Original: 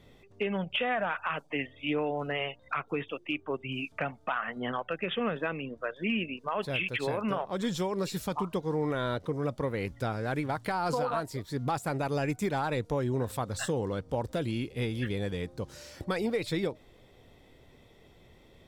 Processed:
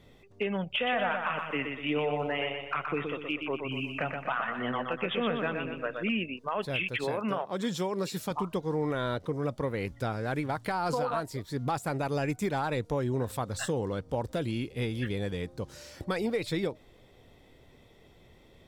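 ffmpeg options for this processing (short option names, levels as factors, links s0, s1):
-filter_complex "[0:a]asettb=1/sr,asplit=3[s0][s1][s2];[s0]atrim=end=0.704[s3];[s1]atrim=start=0.7:end=6.09,asetpts=PTS-STARTPTS,afade=t=in:d=0.004:c=qsin,afade=t=out:st=5.386:d=0.004:c=qsin,aecho=1:1:122|244|366|488|610|732:0.562|0.259|0.119|0.0547|0.0252|0.0116,atrim=end_sample=237699[s4];[s2]atrim=start=6.086[s5];[s3][s4]acrossfade=d=0.004:c1=hsin:c2=qsin[s6];[s6][s5]acrossfade=d=0.004:c1=qsin:c2=hsin,asettb=1/sr,asplit=3[s7][s8][s9];[s7]atrim=end=7.044[s10];[s8]atrim=start=7.04:end=8.31,asetpts=PTS-STARTPTS,afade=t=in:d=0.004:c=qsin,afade=t=out:st=1.266:d=0.004:c=qsin,highpass=130[s11];[s9]atrim=start=8.306[s12];[s10][s11]acrossfade=d=0.004:c1=hsin:c2=qsin[s13];[s13][s12]acrossfade=d=0.004:c1=qsin:c2=hsin"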